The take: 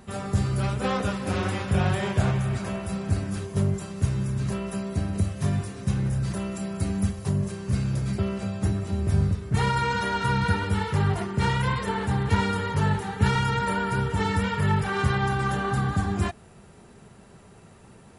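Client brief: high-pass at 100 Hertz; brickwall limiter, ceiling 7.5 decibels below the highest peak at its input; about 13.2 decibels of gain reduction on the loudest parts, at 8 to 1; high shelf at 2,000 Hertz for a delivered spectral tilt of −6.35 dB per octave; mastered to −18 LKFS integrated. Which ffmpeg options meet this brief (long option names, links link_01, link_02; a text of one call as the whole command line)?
ffmpeg -i in.wav -af "highpass=100,highshelf=frequency=2000:gain=-4.5,acompressor=threshold=-33dB:ratio=8,volume=21dB,alimiter=limit=-9dB:level=0:latency=1" out.wav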